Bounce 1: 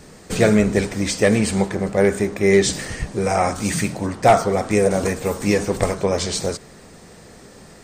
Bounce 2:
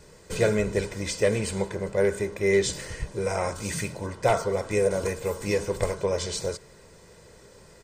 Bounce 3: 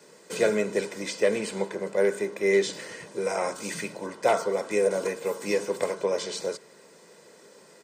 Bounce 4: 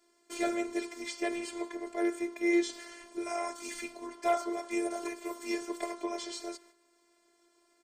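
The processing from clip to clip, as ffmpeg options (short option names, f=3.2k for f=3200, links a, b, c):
-af "aecho=1:1:2:0.56,volume=-8.5dB"
-filter_complex "[0:a]highpass=f=200:w=0.5412,highpass=f=200:w=1.3066,acrossover=split=260|4900[a][b][c];[c]alimiter=level_in=6.5dB:limit=-24dB:level=0:latency=1:release=434,volume=-6.5dB[d];[a][b][d]amix=inputs=3:normalize=0"
-af "agate=range=-9dB:threshold=-49dB:ratio=16:detection=peak,afftfilt=real='hypot(re,im)*cos(PI*b)':imag='0':win_size=512:overlap=0.75,volume=14dB,asoftclip=hard,volume=-14dB,volume=-3dB"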